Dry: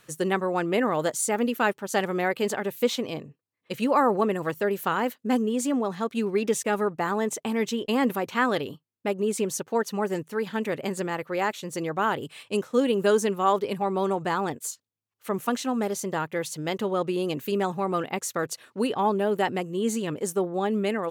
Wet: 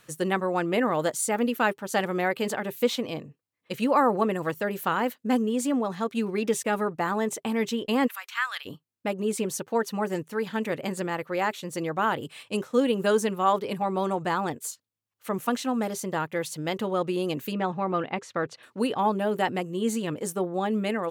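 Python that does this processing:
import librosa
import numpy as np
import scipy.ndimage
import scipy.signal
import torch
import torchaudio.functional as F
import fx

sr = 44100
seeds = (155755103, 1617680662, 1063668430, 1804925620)

y = fx.highpass(x, sr, hz=1300.0, slope=24, at=(8.06, 8.65), fade=0.02)
y = fx.lowpass(y, sr, hz=3500.0, slope=12, at=(17.53, 18.63))
y = fx.notch(y, sr, hz=400.0, q=12.0)
y = fx.dynamic_eq(y, sr, hz=6500.0, q=2.4, threshold_db=-49.0, ratio=4.0, max_db=-3)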